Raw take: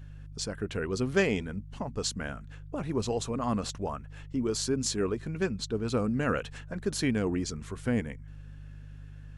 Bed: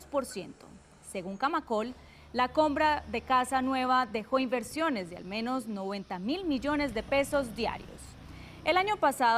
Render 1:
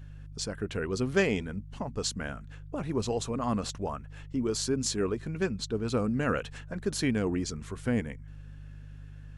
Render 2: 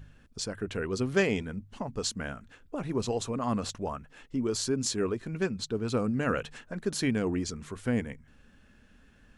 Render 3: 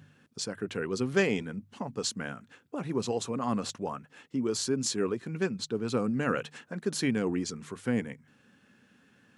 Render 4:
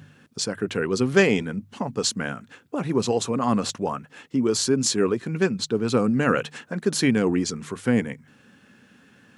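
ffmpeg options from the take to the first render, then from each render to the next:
-af anull
-af "bandreject=f=50:t=h:w=4,bandreject=f=100:t=h:w=4,bandreject=f=150:t=h:w=4"
-af "highpass=f=120:w=0.5412,highpass=f=120:w=1.3066,bandreject=f=630:w=12"
-af "volume=8dB"

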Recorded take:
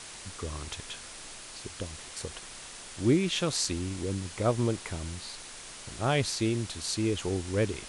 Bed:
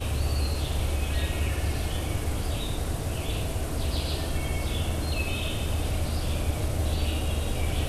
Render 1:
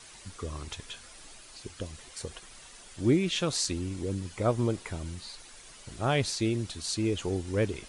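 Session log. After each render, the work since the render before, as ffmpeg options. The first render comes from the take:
-af "afftdn=nr=9:nf=-45"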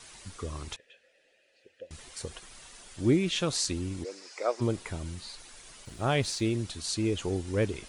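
-filter_complex "[0:a]asettb=1/sr,asplit=3[a][b][c];[a]atrim=end=0.764[d];[b]atrim=start=0.76:end=1.91,asetpts=PTS-STARTPTS,afade=t=in:d=0.004:c=qsin,afade=t=out:st=1.146:d=0.004:c=qsin,asplit=3[e][f][g];[e]bandpass=f=530:t=q:w=8,volume=0dB[h];[f]bandpass=f=1.84k:t=q:w=8,volume=-6dB[i];[g]bandpass=f=2.48k:t=q:w=8,volume=-9dB[j];[h][i][j]amix=inputs=3:normalize=0[k];[c]atrim=start=1.906[l];[d][k]acrossfade=d=0.004:c1=hsin:c2=qsin[m];[m][l]acrossfade=d=0.004:c1=qsin:c2=hsin,asplit=3[n][o][p];[n]afade=t=out:st=4.03:d=0.02[q];[o]highpass=f=440:w=0.5412,highpass=f=440:w=1.3066,equalizer=f=980:t=q:w=4:g=-3,equalizer=f=2.2k:t=q:w=4:g=3,equalizer=f=3.2k:t=q:w=4:g=-8,equalizer=f=5.1k:t=q:w=4:g=9,lowpass=f=7.8k:w=0.5412,lowpass=f=7.8k:w=1.3066,afade=t=in:st=4.03:d=0.02,afade=t=out:st=4.6:d=0.02[r];[p]afade=t=in:st=4.6:d=0.02[s];[q][r][s]amix=inputs=3:normalize=0,asettb=1/sr,asplit=3[t][u][v];[t]atrim=end=5.854[w];[u]atrim=start=5.85:end=6.53,asetpts=PTS-STARTPTS,afade=t=in:d=0.004:c=qsin,afade=t=out:st=0.676:d=0.004:c=qsin,aeval=exprs='sgn(val(0))*max(abs(val(0))-0.00133,0)':c=same[x];[v]atrim=start=6.526[y];[w][x]acrossfade=d=0.004:c1=hsin:c2=qsin[z];[z][y]acrossfade=d=0.004:c1=qsin:c2=hsin"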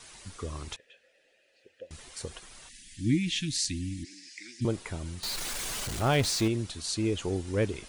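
-filter_complex "[0:a]asettb=1/sr,asplit=3[a][b][c];[a]atrim=end=2.694[d];[b]atrim=start=2.69:end=4.65,asetpts=PTS-STARTPTS,afade=t=in:d=0.004:c=qsin,afade=t=out:st=1.956:d=0.004:c=qsin,asuperstop=centerf=740:order=20:qfactor=0.54[e];[c]atrim=start=4.646[f];[d][e]acrossfade=d=0.004:c1=hsin:c2=qsin[g];[g][f]acrossfade=d=0.004:c1=qsin:c2=hsin,asettb=1/sr,asplit=3[h][i][j];[h]atrim=end=5.234[k];[i]atrim=start=5.23:end=6.48,asetpts=PTS-STARTPTS,afade=t=in:d=0.004:c=qsin,afade=t=out:st=1.246:d=0.004:c=qsin,aeval=exprs='val(0)+0.5*0.0316*sgn(val(0))':c=same[l];[j]atrim=start=6.476[m];[k][l]acrossfade=d=0.004:c1=hsin:c2=qsin[n];[n][m]acrossfade=d=0.004:c1=qsin:c2=hsin"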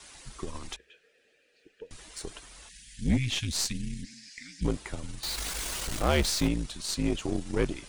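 -af "afreqshift=-63,aeval=exprs='0.299*(cos(1*acos(clip(val(0)/0.299,-1,1)))-cos(1*PI/2))+0.0211*(cos(8*acos(clip(val(0)/0.299,-1,1)))-cos(8*PI/2))':c=same"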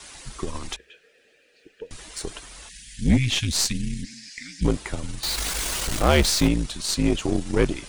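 -af "volume=7dB"

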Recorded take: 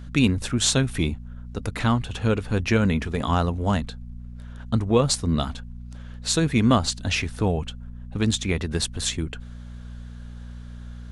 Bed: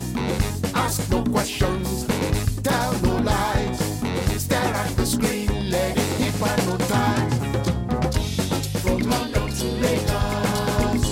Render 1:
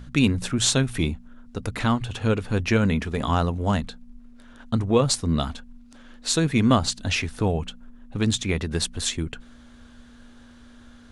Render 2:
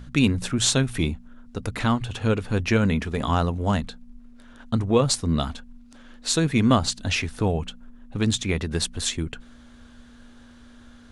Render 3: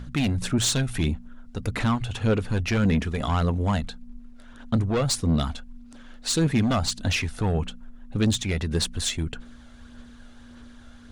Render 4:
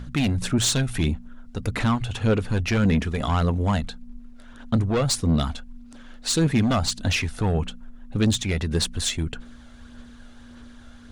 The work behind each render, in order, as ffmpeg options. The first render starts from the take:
-af "bandreject=f=60:t=h:w=4,bandreject=f=120:t=h:w=4,bandreject=f=180:t=h:w=4"
-af anull
-af "asoftclip=type=tanh:threshold=-18dB,aphaser=in_gain=1:out_gain=1:delay=1.5:decay=0.33:speed=1.7:type=sinusoidal"
-af "volume=1.5dB"

